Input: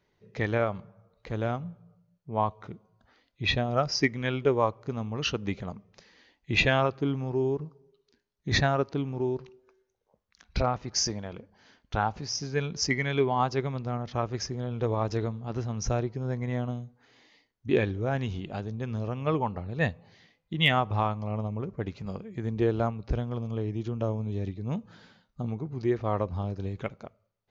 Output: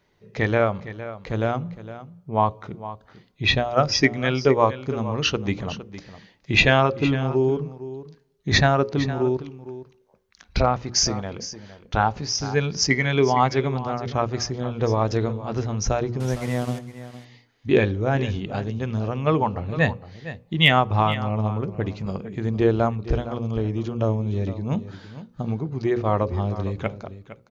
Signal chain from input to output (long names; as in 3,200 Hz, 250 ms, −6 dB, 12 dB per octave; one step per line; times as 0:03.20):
0:16.20–0:16.79: linear delta modulator 64 kbit/s, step −40 dBFS
mains-hum notches 60/120/180/240/300/360/420/480/540 Hz
single-tap delay 460 ms −14 dB
level +7 dB